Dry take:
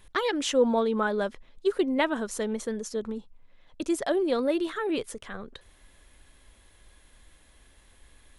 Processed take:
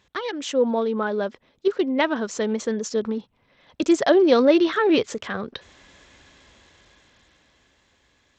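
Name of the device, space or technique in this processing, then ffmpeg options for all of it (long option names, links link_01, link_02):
Bluetooth headset: -filter_complex "[0:a]asettb=1/sr,asplit=3[link_01][link_02][link_03];[link_01]atrim=end=0.534[link_04];[link_02]atrim=start=0.53:end=1.68,asetpts=PTS-STARTPTS,afade=type=in:duration=0.004:curve=qsin,afade=type=out:start_time=1.146:duration=0.004:curve=qsin,equalizer=frequency=370:width_type=o:width=2.5:gain=4[link_05];[link_03]atrim=start=1.676[link_06];[link_04][link_05]acrossfade=duration=0.004:curve1=hsin:curve2=qsin[link_07];[link_07][link_06]acrossfade=duration=0.004:curve1=qsin:curve2=hsin,highpass=100,dynaudnorm=framelen=290:gausssize=13:maxgain=14dB,aresample=16000,aresample=44100,volume=-2dB" -ar 32000 -c:a sbc -b:a 64k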